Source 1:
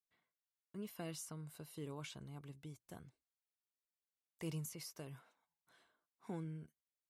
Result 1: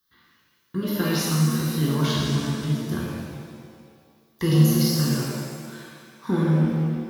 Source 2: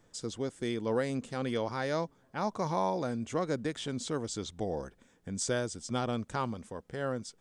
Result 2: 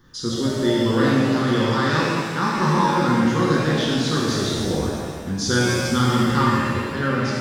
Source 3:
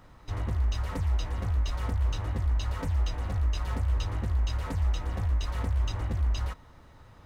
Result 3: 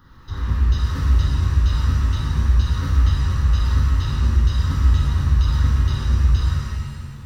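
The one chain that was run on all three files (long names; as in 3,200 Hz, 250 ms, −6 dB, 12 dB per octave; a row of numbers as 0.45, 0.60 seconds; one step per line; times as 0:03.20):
phaser with its sweep stopped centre 2,400 Hz, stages 6
reverb with rising layers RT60 1.8 s, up +7 semitones, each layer −8 dB, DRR −5.5 dB
normalise the peak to −6 dBFS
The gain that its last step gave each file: +21.5, +11.5, +3.5 decibels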